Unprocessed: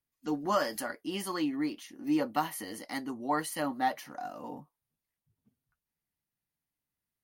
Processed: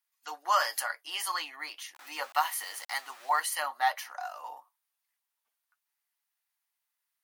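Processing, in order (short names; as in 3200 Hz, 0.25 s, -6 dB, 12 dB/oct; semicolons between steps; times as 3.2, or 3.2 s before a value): 1.94–3.4 sample gate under -47 dBFS; HPF 820 Hz 24 dB/oct; gain +6 dB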